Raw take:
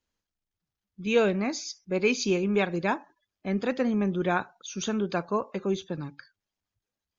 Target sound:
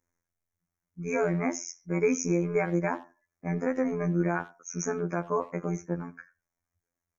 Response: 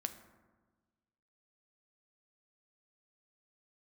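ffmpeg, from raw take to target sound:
-filter_complex "[0:a]afftfilt=real='hypot(re,im)*cos(PI*b)':imag='0':win_size=2048:overlap=0.75,asuperstop=centerf=3600:order=20:qfactor=1.2,alimiter=limit=-20dB:level=0:latency=1:release=86,asplit=2[a][b];[b]adelay=90,highpass=300,lowpass=3.4k,asoftclip=type=hard:threshold=-29.5dB,volume=-20dB[c];[a][c]amix=inputs=2:normalize=0,volume=4.5dB"

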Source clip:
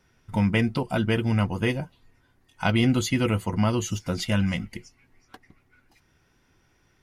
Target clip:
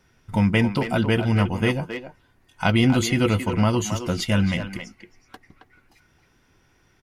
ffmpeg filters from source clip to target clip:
-filter_complex "[0:a]asplit=2[a][b];[b]adelay=270,highpass=300,lowpass=3.4k,asoftclip=type=hard:threshold=-18dB,volume=-7dB[c];[a][c]amix=inputs=2:normalize=0,volume=3dB"

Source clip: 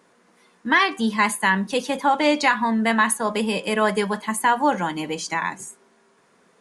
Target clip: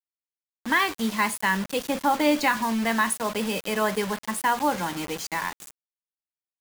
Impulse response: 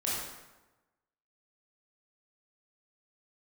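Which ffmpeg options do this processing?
-filter_complex "[0:a]asettb=1/sr,asplit=3[a][b][c];[a]atrim=end=1.854[d];[b]atrim=start=1.85:end=2.57,asetpts=PTS-STARTPTS,afade=t=in:d=0.004:c=qsin,afade=t=out:st=0.716:d=0.004:c=qsin,lowshelf=f=240:g=9.5[e];[c]atrim=start=2.566[f];[d][e]acrossfade=d=0.004:c1=hsin:c2=qsin[g];[g][f]acrossfade=d=0.004:c1=qsin:c2=hsin,acrusher=bits=4:mix=0:aa=0.000001,volume=-4.5dB"

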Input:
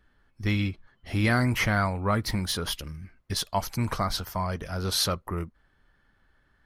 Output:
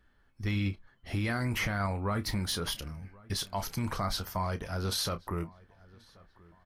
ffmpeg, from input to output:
-filter_complex "[0:a]asplit=2[a][b];[b]adelay=30,volume=-13.5dB[c];[a][c]amix=inputs=2:normalize=0,alimiter=limit=-20dB:level=0:latency=1:release=30,asplit=2[d][e];[e]adelay=1082,lowpass=f=3k:p=1,volume=-24dB,asplit=2[f][g];[g]adelay=1082,lowpass=f=3k:p=1,volume=0.41,asplit=2[h][i];[i]adelay=1082,lowpass=f=3k:p=1,volume=0.41[j];[d][f][h][j]amix=inputs=4:normalize=0,volume=-2.5dB"

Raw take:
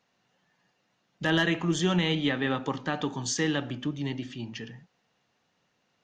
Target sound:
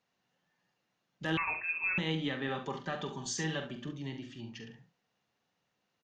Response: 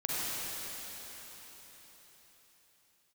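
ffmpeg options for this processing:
-filter_complex "[0:a]asettb=1/sr,asplit=3[a][b][c];[a]atrim=end=2.484[d];[b]atrim=start=2.48:end=3.89,asetpts=PTS-STARTPTS,afade=t=in:d=0.004:c=qsin,afade=t=out:st=1.406:d=0.004:c=qsin,aecho=1:1:5.1:0.64,atrim=end_sample=62181[e];[c]atrim=start=3.886[f];[d][e]acrossfade=d=0.004:c1=hsin:c2=qsin[g];[g][f]acrossfade=d=0.004:c1=qsin:c2=hsin,aecho=1:1:44|69:0.355|0.282,asettb=1/sr,asplit=3[h][i][j];[h]atrim=end=1.374[k];[i]atrim=start=1.37:end=1.98,asetpts=PTS-STARTPTS,afade=t=in:d=0.004:c=qsin,afade=t=out:st=0.606:d=0.004:c=qsin,lowpass=f=2.4k:t=q:w=0.5098,lowpass=f=2.4k:t=q:w=0.6013,lowpass=f=2.4k:t=q:w=0.9,lowpass=f=2.4k:t=q:w=2.563,afreqshift=-2800[l];[j]atrim=start=1.976[m];[k][l]acrossfade=d=0.004:c1=hsin:c2=qsin[n];[n][m]acrossfade=d=0.004:c1=qsin:c2=hsin,volume=-8.5dB"

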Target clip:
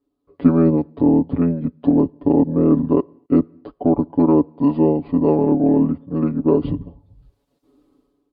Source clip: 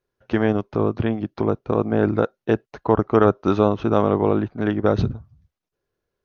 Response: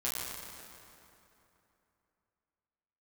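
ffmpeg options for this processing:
-filter_complex "[0:a]highpass=53,aecho=1:1:5.3:0.99,asplit=2[a][b];[1:a]atrim=start_sample=2205,afade=t=out:st=0.44:d=0.01,atrim=end_sample=19845,asetrate=88200,aresample=44100[c];[b][c]afir=irnorm=-1:irlink=0,volume=-26dB[d];[a][d]amix=inputs=2:normalize=0,asetrate=33075,aresample=44100,equalizer=f=125:t=o:w=1:g=-8,equalizer=f=250:t=o:w=1:g=9,equalizer=f=500:t=o:w=1:g=9,equalizer=f=1k:t=o:w=1:g=4,equalizer=f=2k:t=o:w=1:g=-4,equalizer=f=4k:t=o:w=1:g=4,dynaudnorm=f=100:g=9:m=15dB,lowshelf=f=280:g=11.5,volume=-8dB"

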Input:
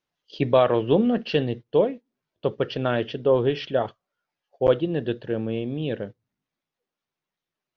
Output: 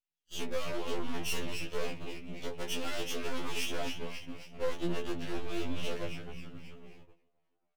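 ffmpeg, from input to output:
-filter_complex "[0:a]acrossover=split=4000[a][b];[b]acompressor=threshold=-58dB:ratio=4:attack=1:release=60[c];[a][c]amix=inputs=2:normalize=0,asettb=1/sr,asplit=3[d][e][f];[d]atrim=end=1.664[g];[e]atrim=start=1.66:end=3.68,asetpts=PTS-STARTPTS,afade=t=in:d=0.004:c=qsin,afade=t=out:st=2.016:d=0.004:c=qsin,highpass=f=200:p=1[h];[f]atrim=start=3.676[i];[g][h]acrossfade=d=0.004:c1=hsin:c2=qsin[j];[j][i]acrossfade=d=0.004:c1=qsin:c2=hsin,acompressor=threshold=-25dB:ratio=10,asplit=8[k][l][m][n][o][p][q][r];[l]adelay=269,afreqshift=-130,volume=-10dB[s];[m]adelay=538,afreqshift=-260,volume=-14.4dB[t];[n]adelay=807,afreqshift=-390,volume=-18.9dB[u];[o]adelay=1076,afreqshift=-520,volume=-23.3dB[v];[p]adelay=1345,afreqshift=-650,volume=-27.7dB[w];[q]adelay=1614,afreqshift=-780,volume=-32.2dB[x];[r]adelay=1883,afreqshift=-910,volume=-36.6dB[y];[k][s][t][u][v][w][x][y]amix=inputs=8:normalize=0,agate=range=-19dB:threshold=-51dB:ratio=16:detection=peak,equalizer=f=2.6k:w=1.8:g=9,aeval=exprs='max(val(0),0)':c=same,highshelf=f=4.6k:g=9.5,asoftclip=type=hard:threshold=-29dB,flanger=delay=16:depth=2.9:speed=2.2,afftfilt=real='re*2*eq(mod(b,4),0)':imag='im*2*eq(mod(b,4),0)':win_size=2048:overlap=0.75,volume=6dB"

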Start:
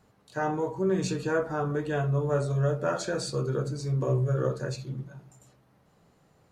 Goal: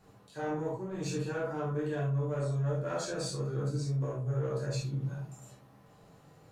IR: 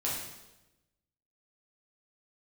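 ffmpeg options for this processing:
-filter_complex "[0:a]asoftclip=type=tanh:threshold=-21.5dB,areverse,acompressor=threshold=-37dB:ratio=6,areverse[a];[1:a]atrim=start_sample=2205,afade=t=out:st=0.13:d=0.01,atrim=end_sample=6174[b];[a][b]afir=irnorm=-1:irlink=0"

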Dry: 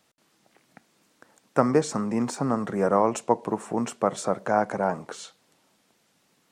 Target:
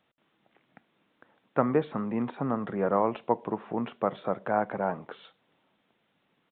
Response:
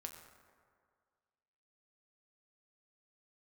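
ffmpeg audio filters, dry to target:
-af "aresample=8000,aresample=44100,volume=-4dB"

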